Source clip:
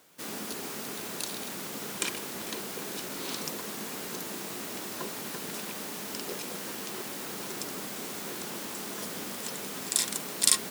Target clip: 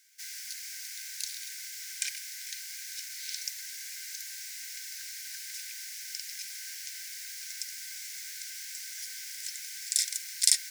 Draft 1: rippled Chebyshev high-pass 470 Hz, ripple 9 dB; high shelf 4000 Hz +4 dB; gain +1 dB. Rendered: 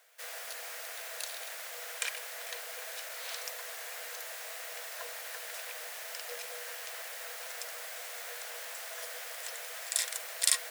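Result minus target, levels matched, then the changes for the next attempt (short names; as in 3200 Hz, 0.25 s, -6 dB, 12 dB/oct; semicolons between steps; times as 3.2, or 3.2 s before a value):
2000 Hz band +6.0 dB
change: rippled Chebyshev high-pass 1500 Hz, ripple 9 dB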